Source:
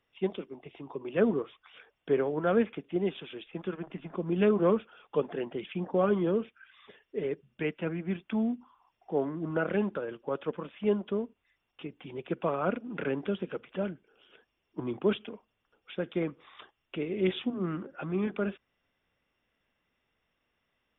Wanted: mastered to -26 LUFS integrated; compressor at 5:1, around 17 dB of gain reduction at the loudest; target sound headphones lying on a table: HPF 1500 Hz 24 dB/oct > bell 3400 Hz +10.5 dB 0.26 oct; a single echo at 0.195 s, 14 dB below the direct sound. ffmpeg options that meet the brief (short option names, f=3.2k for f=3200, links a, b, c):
-af "acompressor=threshold=-40dB:ratio=5,highpass=f=1.5k:w=0.5412,highpass=f=1.5k:w=1.3066,equalizer=f=3.4k:t=o:w=0.26:g=10.5,aecho=1:1:195:0.2,volume=25.5dB"